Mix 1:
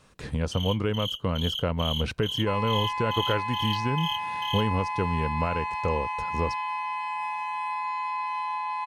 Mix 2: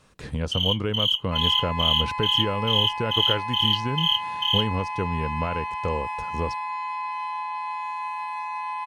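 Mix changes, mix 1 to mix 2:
first sound: add resonant high-pass 2800 Hz, resonance Q 3.8; second sound: entry -1.15 s

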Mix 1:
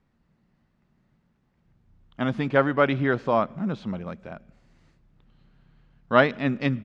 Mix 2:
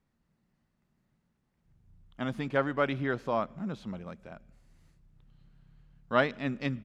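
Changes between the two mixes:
speech -8.0 dB; master: remove air absorption 100 m

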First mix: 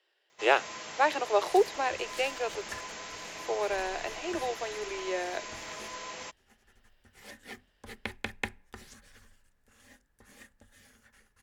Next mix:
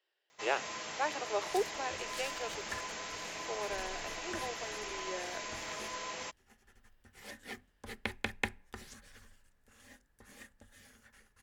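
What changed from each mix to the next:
speech -9.0 dB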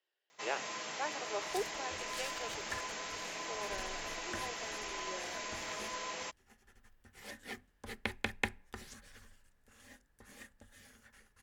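speech -5.0 dB; first sound: add HPF 130 Hz

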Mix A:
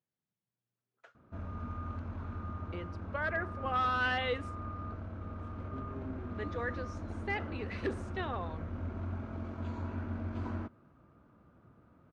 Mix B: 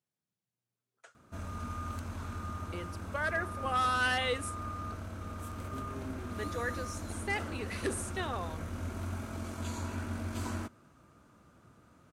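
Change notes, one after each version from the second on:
background: add high shelf 2100 Hz +10.5 dB; master: remove air absorption 220 m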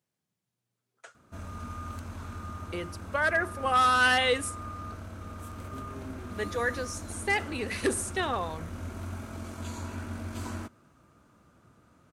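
speech +7.0 dB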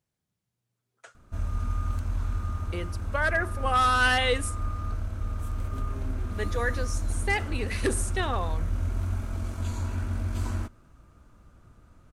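master: remove HPF 140 Hz 12 dB/oct

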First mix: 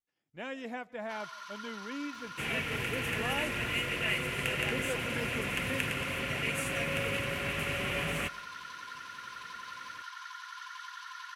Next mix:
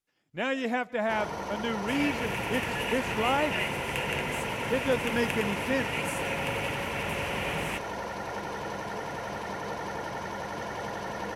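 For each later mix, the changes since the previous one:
speech +10.5 dB; first sound: remove rippled Chebyshev high-pass 1000 Hz, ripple 9 dB; second sound: entry -0.50 s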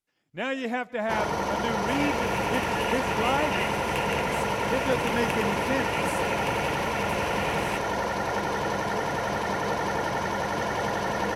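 first sound +7.5 dB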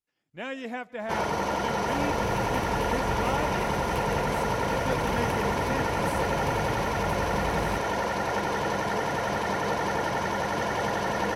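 speech -5.5 dB; second sound: remove weighting filter D

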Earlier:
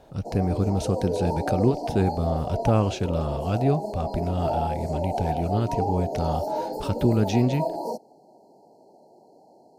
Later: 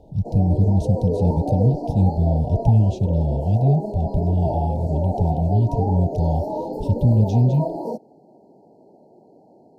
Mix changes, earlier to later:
speech: add inverse Chebyshev band-stop 530–1200 Hz, stop band 70 dB; master: add tilt shelf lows +9 dB, about 710 Hz

